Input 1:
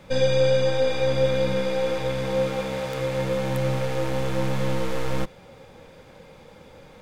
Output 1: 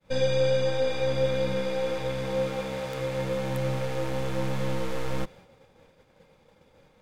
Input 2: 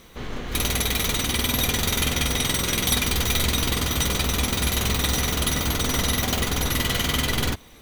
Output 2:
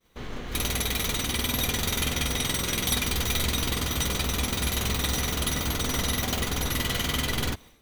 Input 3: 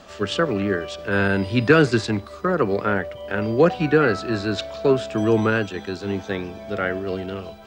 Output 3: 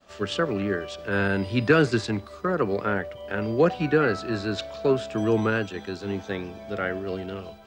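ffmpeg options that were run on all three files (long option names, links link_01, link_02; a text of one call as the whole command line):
ffmpeg -i in.wav -af "agate=range=-33dB:threshold=-40dB:ratio=3:detection=peak,volume=-4dB" out.wav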